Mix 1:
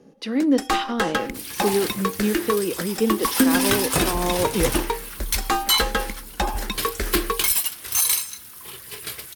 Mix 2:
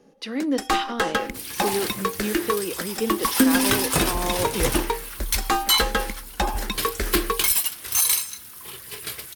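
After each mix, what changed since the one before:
speech: add low shelf 490 Hz -7.5 dB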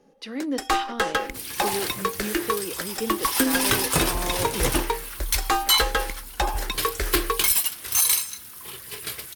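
speech -4.0 dB; first sound: add bell 210 Hz -14 dB 0.55 oct

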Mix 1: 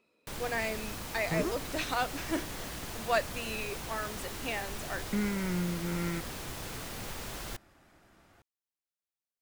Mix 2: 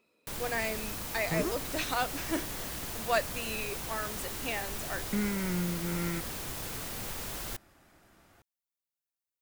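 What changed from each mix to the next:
master: add high shelf 8800 Hz +8 dB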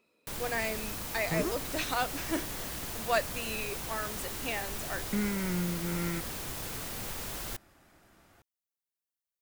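none

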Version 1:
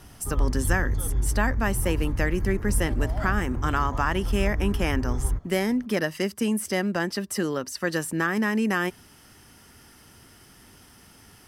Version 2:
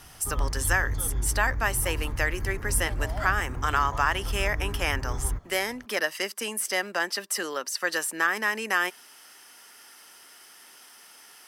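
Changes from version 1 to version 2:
speech: add HPF 470 Hz 12 dB/oct; master: add tilt shelf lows -4 dB, about 650 Hz

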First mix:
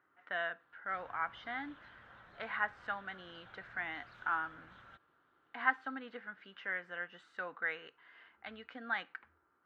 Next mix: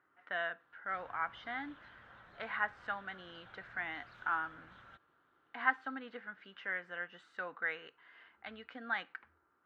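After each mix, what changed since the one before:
none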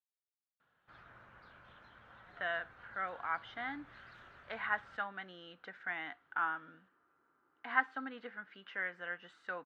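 speech: entry +2.10 s

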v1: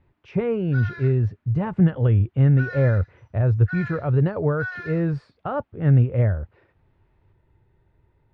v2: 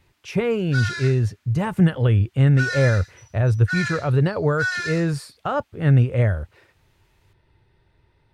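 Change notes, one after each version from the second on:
background: add tilt +2 dB/oct; master: remove tape spacing loss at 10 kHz 40 dB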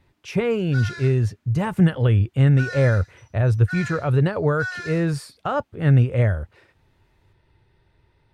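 background: add tilt shelf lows +9 dB, about 690 Hz

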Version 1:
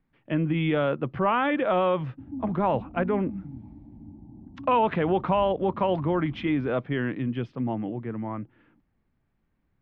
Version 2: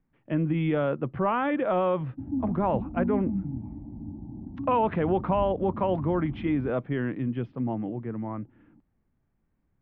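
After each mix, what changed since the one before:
background +7.0 dB; master: add tape spacing loss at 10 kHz 26 dB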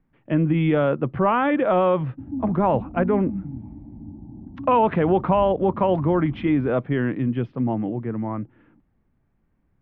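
speech +6.0 dB

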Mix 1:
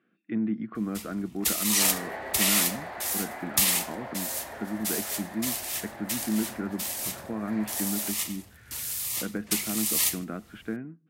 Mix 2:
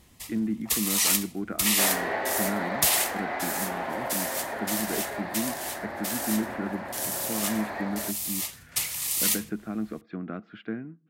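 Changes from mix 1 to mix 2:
first sound: entry -0.75 s; second sound +7.5 dB

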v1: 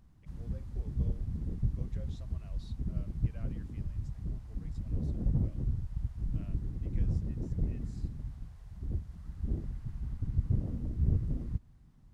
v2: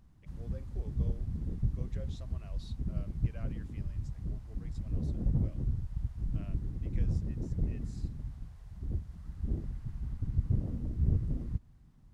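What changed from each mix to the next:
speech +4.0 dB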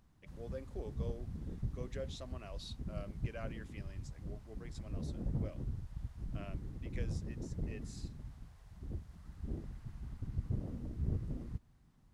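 speech +6.0 dB; background: add low shelf 230 Hz -9 dB

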